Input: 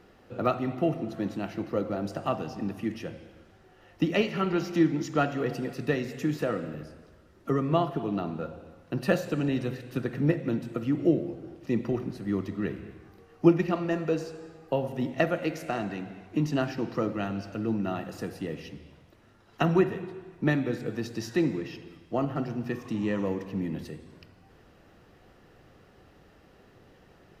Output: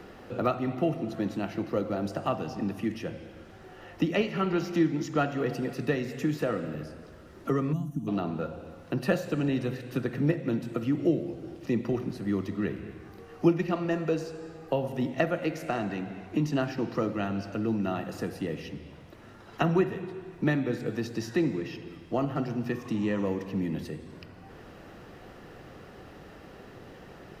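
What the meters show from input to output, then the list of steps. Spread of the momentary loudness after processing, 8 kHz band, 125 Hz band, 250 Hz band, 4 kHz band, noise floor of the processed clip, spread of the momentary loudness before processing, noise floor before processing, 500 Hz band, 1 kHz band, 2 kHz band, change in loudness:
21 LU, n/a, 0.0 dB, -0.5 dB, -1.0 dB, -49 dBFS, 14 LU, -58 dBFS, -0.5 dB, -1.0 dB, -0.5 dB, -1.0 dB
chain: spectral gain 7.73–8.08, 320–5700 Hz -25 dB; three-band squash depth 40%

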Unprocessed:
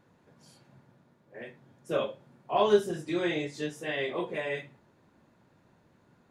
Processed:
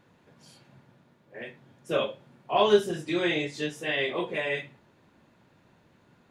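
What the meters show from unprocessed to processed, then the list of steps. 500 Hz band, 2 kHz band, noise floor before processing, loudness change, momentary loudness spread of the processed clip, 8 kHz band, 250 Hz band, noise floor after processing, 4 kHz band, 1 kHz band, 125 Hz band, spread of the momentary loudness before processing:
+2.0 dB, +5.5 dB, -66 dBFS, +3.0 dB, 20 LU, +3.0 dB, +2.0 dB, -63 dBFS, +7.0 dB, +2.5 dB, +2.0 dB, 20 LU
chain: bell 2900 Hz +5.5 dB 1.2 oct; gain +2 dB

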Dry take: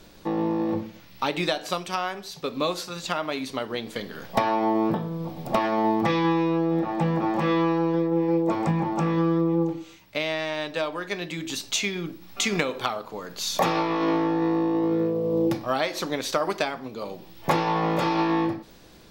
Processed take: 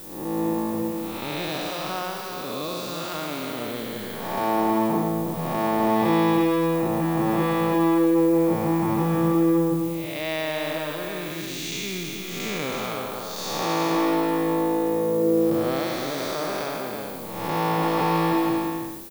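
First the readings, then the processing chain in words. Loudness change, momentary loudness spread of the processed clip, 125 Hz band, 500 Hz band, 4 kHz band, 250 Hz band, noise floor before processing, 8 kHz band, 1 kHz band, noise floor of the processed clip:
+1.5 dB, 10 LU, +0.5 dB, +2.0 dB, -1.0 dB, +2.0 dB, -49 dBFS, -0.5 dB, +1.0 dB, -33 dBFS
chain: time blur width 0.315 s; echo 0.323 s -5 dB; added noise violet -44 dBFS; gain +2 dB

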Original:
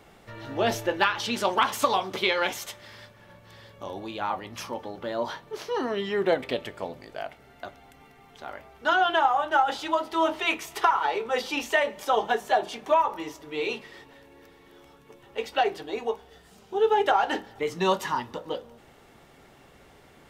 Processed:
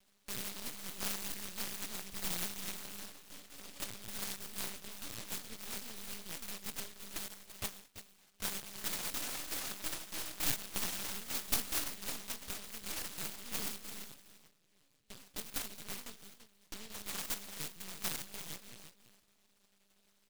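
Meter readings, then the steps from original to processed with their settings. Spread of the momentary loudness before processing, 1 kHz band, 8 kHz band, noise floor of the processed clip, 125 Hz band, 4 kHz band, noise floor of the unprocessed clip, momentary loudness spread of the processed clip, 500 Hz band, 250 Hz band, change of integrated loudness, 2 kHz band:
15 LU, -26.0 dB, +3.0 dB, -72 dBFS, -9.0 dB, -9.0 dB, -55 dBFS, 14 LU, -26.5 dB, -15.0 dB, -13.0 dB, -17.0 dB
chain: median filter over 9 samples; gate with hold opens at -41 dBFS; bell 200 Hz +7 dB 2.2 oct; comb 5 ms, depth 96%; limiter -13.5 dBFS, peak gain reduction 10 dB; compressor 16:1, threshold -29 dBFS, peak gain reduction 13.5 dB; auto-wah 730–2300 Hz, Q 2.5, up, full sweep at -30 dBFS; half-wave rectifier; LPC vocoder at 8 kHz pitch kept; on a send: echo 0.337 s -11 dB; on the sum: noise-modulated delay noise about 3400 Hz, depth 0.44 ms; gain +8.5 dB

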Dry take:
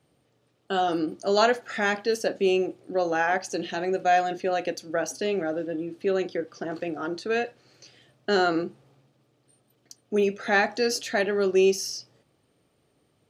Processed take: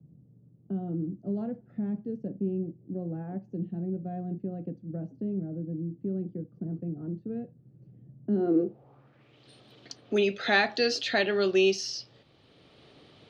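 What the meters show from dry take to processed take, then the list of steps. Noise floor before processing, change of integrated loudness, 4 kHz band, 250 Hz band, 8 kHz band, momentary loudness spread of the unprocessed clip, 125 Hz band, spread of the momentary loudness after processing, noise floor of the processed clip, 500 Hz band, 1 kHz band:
-69 dBFS, -4.5 dB, -1.5 dB, -0.5 dB, n/a, 10 LU, +6.0 dB, 14 LU, -60 dBFS, -6.5 dB, -11.5 dB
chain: low-pass sweep 170 Hz -> 3800 Hz, 8.24–9.45; three-band squash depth 40%

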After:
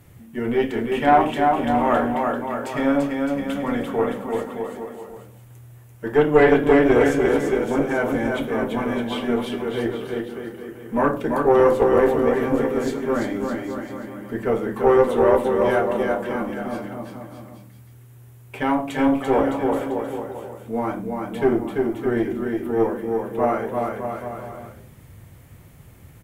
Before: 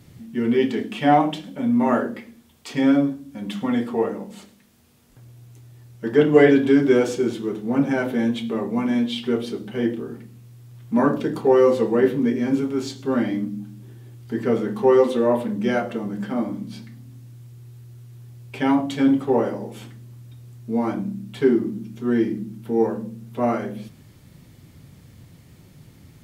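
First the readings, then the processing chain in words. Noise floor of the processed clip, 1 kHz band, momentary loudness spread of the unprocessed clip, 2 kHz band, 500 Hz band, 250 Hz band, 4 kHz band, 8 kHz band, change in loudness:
-46 dBFS, +4.5 dB, 16 LU, +3.5 dB, +2.0 dB, -2.0 dB, -1.5 dB, n/a, 0.0 dB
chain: bell 4600 Hz -12.5 dB 1.3 oct; bouncing-ball echo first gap 0.34 s, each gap 0.8×, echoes 5; tube stage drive 7 dB, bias 0.45; bell 210 Hz -10 dB 1.7 oct; gain +6 dB

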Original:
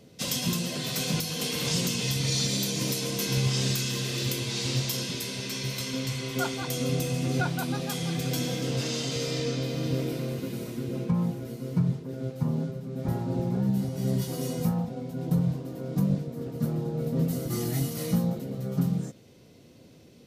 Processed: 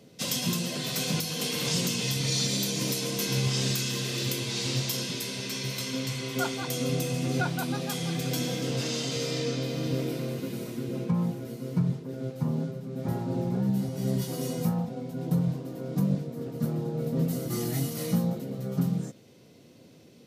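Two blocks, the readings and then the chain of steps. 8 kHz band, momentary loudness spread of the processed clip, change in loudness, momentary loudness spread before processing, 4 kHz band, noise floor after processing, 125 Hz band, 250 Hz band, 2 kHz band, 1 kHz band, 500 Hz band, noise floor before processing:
0.0 dB, 6 LU, -0.5 dB, 6 LU, 0.0 dB, -54 dBFS, -1.5 dB, -0.5 dB, 0.0 dB, 0.0 dB, 0.0 dB, -53 dBFS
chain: HPF 110 Hz

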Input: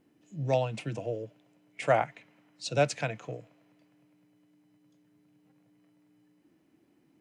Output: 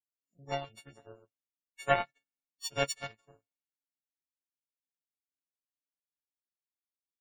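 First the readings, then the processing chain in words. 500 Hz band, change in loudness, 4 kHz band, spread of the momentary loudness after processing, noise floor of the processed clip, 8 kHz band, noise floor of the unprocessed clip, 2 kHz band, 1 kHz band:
-7.5 dB, -3.0 dB, +1.0 dB, 18 LU, under -85 dBFS, -0.5 dB, -68 dBFS, -1.0 dB, -3.5 dB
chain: frequency quantiser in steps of 4 st; power-law curve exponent 2; spectral gate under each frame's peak -25 dB strong

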